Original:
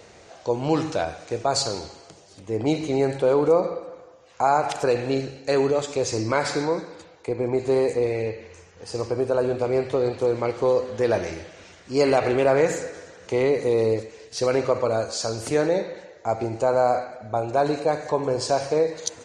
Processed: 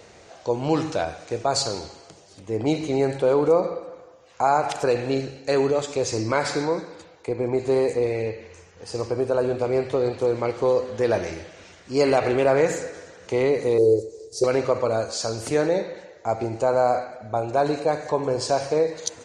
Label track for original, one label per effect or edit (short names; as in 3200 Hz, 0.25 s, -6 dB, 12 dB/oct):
13.780000	14.440000	EQ curve 100 Hz 0 dB, 260 Hz -8 dB, 380 Hz +10 dB, 600 Hz -4 dB, 1500 Hz -24 dB, 2800 Hz -24 dB, 4400 Hz -5 dB, 7900 Hz +3 dB